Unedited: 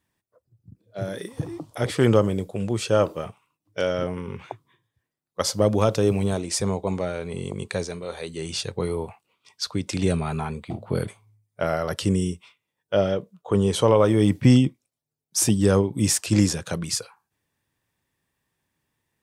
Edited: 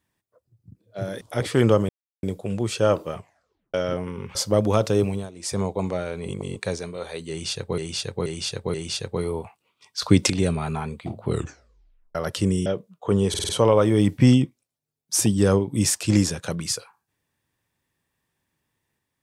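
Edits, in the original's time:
1.21–1.65 cut
2.33 insert silence 0.34 s
3.26 tape stop 0.58 s
4.45–5.43 cut
6.1–6.69 dip -16.5 dB, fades 0.29 s
7.37–7.64 reverse
8.38–8.86 loop, 4 plays
9.66–9.94 gain +11 dB
10.89 tape stop 0.90 s
12.3–13.09 cut
13.72 stutter 0.05 s, 5 plays

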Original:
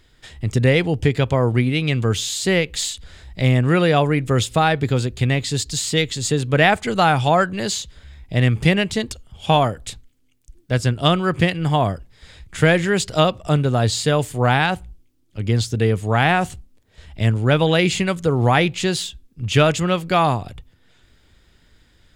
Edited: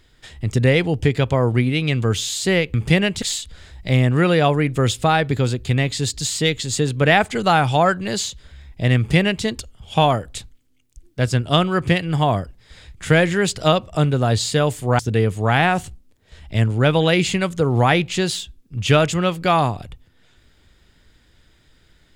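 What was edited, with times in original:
8.49–8.97 copy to 2.74
14.51–15.65 cut

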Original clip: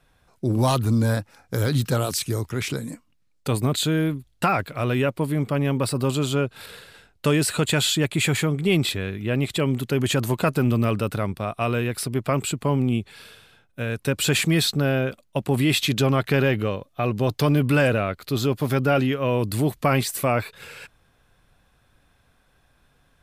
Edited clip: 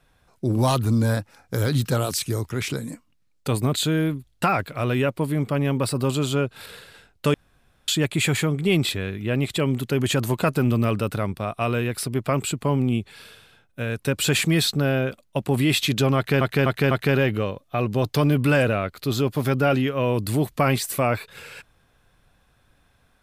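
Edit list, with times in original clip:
7.34–7.88 room tone
16.16–16.41 loop, 4 plays

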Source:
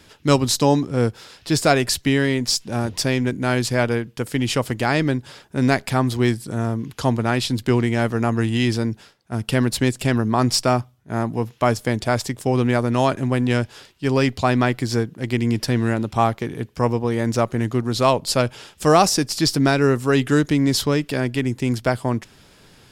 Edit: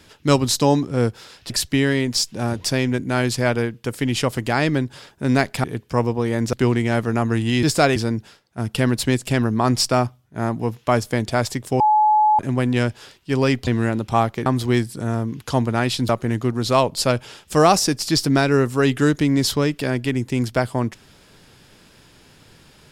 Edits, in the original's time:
1.5–1.83 move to 8.7
5.97–7.6 swap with 16.5–17.39
12.54–13.13 bleep 853 Hz -12 dBFS
14.41–15.71 cut

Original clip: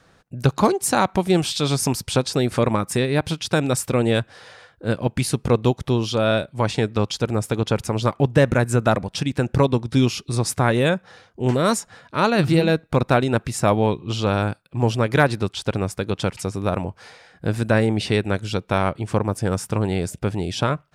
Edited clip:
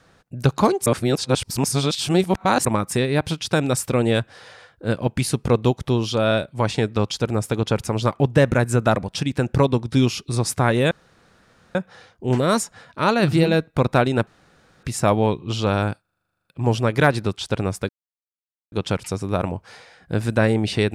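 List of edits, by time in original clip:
0.86–2.65 reverse
10.91 insert room tone 0.84 s
13.43 insert room tone 0.56 s
14.61 stutter 0.04 s, 12 plays
16.05 insert silence 0.83 s

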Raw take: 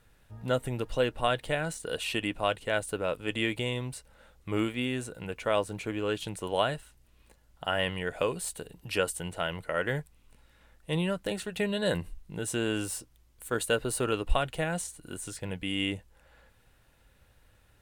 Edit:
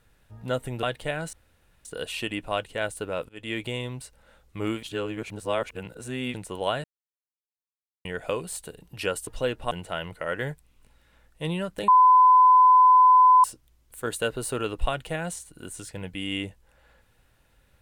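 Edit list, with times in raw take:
0.83–1.27 move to 9.19
1.77 insert room tone 0.52 s
3.21–3.52 fade in, from -24 dB
4.75–6.26 reverse
6.76–7.97 mute
11.36–12.92 bleep 1010 Hz -12 dBFS

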